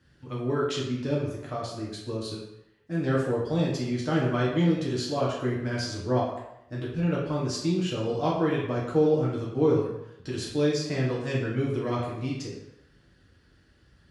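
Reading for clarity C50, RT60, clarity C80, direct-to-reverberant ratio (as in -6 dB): 2.5 dB, 0.85 s, 5.5 dB, -6.0 dB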